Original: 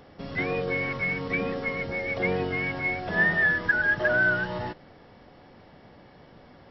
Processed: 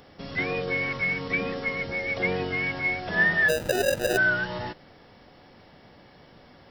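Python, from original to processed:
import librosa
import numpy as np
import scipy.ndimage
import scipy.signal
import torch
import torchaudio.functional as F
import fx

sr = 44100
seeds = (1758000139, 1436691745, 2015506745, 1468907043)

y = fx.high_shelf(x, sr, hz=2800.0, db=9.0)
y = fx.sample_hold(y, sr, seeds[0], rate_hz=1100.0, jitter_pct=0, at=(3.48, 4.16), fade=0.02)
y = y * 10.0 ** (-1.5 / 20.0)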